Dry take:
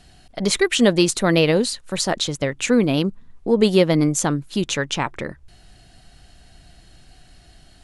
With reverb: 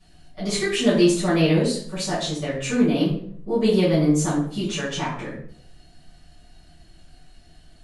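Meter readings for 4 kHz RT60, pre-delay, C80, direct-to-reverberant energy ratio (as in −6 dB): 0.45 s, 5 ms, 7.5 dB, −11.0 dB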